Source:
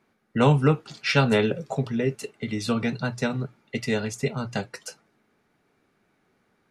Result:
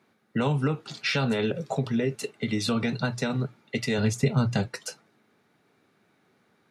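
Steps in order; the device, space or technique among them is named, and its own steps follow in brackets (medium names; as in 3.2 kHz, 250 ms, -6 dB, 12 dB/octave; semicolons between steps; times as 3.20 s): broadcast voice chain (high-pass 87 Hz 24 dB/octave; de-esser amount 55%; compression 4:1, threshold -22 dBFS, peak gain reduction 7.5 dB; peaking EQ 3.8 kHz +4 dB 0.32 oct; peak limiter -18.5 dBFS, peak gain reduction 5 dB); 3.98–4.68 s: bass shelf 190 Hz +11.5 dB; trim +2 dB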